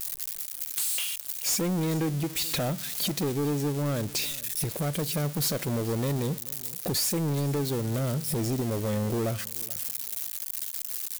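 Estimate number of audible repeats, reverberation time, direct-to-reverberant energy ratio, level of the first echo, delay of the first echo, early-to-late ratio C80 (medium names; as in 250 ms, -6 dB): 1, no reverb, no reverb, -21.0 dB, 430 ms, no reverb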